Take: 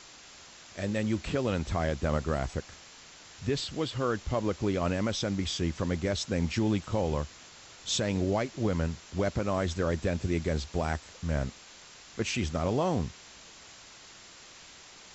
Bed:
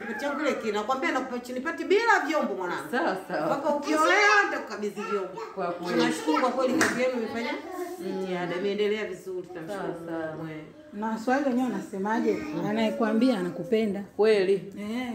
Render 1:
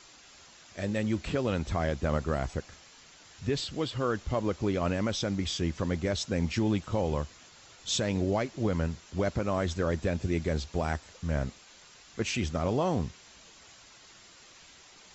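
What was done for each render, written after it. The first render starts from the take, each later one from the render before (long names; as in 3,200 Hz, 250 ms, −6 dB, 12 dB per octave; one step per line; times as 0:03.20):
broadband denoise 6 dB, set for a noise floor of −52 dBFS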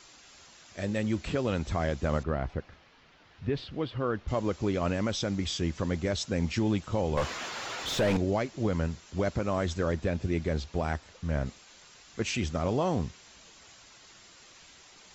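0:02.23–0:04.28: high-frequency loss of the air 280 metres
0:07.17–0:08.17: mid-hump overdrive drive 32 dB, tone 1,400 Hz, clips at −18 dBFS
0:09.92–0:11.46: high-frequency loss of the air 62 metres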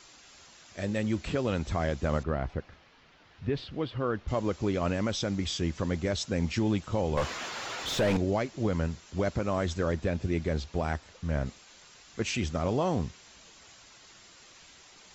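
no processing that can be heard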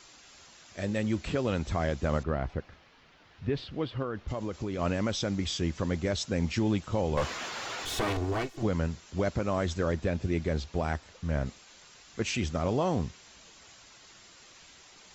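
0:04.02–0:04.79: downward compressor, threshold −29 dBFS
0:07.85–0:08.63: lower of the sound and its delayed copy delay 2.7 ms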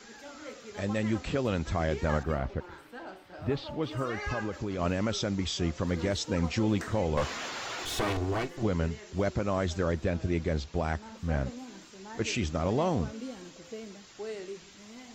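mix in bed −17.5 dB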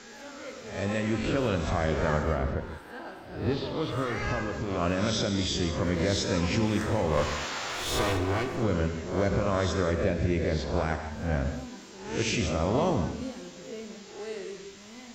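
peak hold with a rise ahead of every peak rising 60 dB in 0.57 s
reverb whose tail is shaped and stops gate 220 ms flat, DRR 6 dB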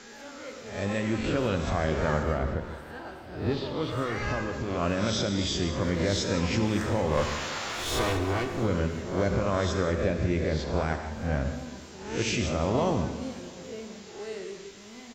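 repeating echo 343 ms, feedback 56%, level −19.5 dB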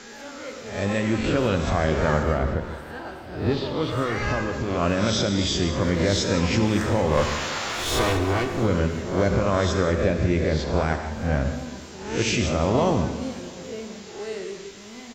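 level +5 dB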